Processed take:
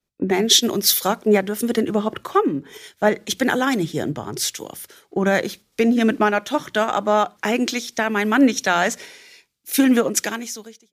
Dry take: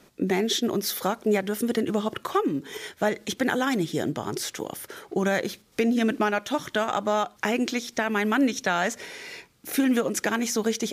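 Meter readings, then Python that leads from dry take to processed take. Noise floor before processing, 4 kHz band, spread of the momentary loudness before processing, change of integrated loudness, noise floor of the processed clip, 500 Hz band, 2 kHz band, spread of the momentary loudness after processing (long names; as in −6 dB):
−58 dBFS, +9.0 dB, 9 LU, +6.0 dB, −67 dBFS, +5.5 dB, +5.0 dB, 11 LU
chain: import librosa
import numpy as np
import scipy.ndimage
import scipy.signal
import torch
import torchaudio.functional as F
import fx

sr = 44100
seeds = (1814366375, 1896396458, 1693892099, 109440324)

y = fx.fade_out_tail(x, sr, length_s=0.9)
y = fx.hum_notches(y, sr, base_hz=60, count=3)
y = fx.band_widen(y, sr, depth_pct=100)
y = y * librosa.db_to_amplitude(5.5)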